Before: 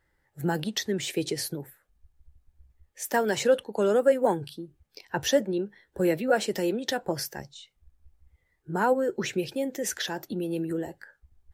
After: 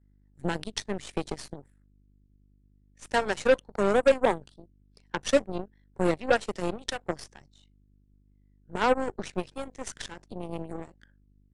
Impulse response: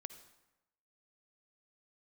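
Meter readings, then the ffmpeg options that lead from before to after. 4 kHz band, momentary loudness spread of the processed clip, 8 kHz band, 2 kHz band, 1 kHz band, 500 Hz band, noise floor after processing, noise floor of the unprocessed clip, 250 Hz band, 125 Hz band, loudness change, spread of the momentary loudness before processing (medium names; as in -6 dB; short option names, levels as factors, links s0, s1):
-4.0 dB, 16 LU, -6.5 dB, +0.5 dB, +0.5 dB, -1.5 dB, -62 dBFS, -73 dBFS, -3.5 dB, -3.0 dB, -1.5 dB, 14 LU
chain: -af "aeval=exprs='val(0)+0.00708*(sin(2*PI*50*n/s)+sin(2*PI*2*50*n/s)/2+sin(2*PI*3*50*n/s)/3+sin(2*PI*4*50*n/s)/4+sin(2*PI*5*50*n/s)/5)':c=same,aeval=exprs='0.316*(cos(1*acos(clip(val(0)/0.316,-1,1)))-cos(1*PI/2))+0.0398*(cos(7*acos(clip(val(0)/0.316,-1,1)))-cos(7*PI/2))+0.0178*(cos(8*acos(clip(val(0)/0.316,-1,1)))-cos(8*PI/2))':c=same,aresample=22050,aresample=44100"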